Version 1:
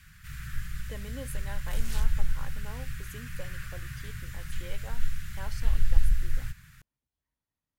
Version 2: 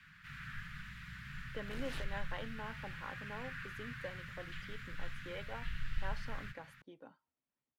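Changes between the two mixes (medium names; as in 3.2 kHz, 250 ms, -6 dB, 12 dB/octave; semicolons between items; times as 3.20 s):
speech: entry +0.65 s; master: add three-band isolator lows -18 dB, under 160 Hz, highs -21 dB, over 3.9 kHz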